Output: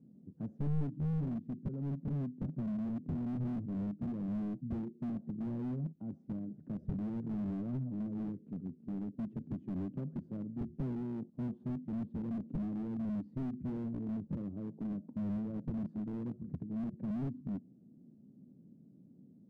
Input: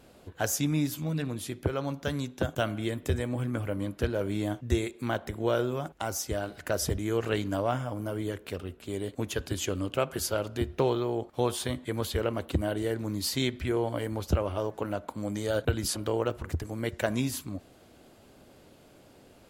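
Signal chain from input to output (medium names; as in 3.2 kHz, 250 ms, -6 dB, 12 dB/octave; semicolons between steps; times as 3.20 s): Butterworth band-pass 190 Hz, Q 1.9; slew-rate limiter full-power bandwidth 2.3 Hz; trim +5 dB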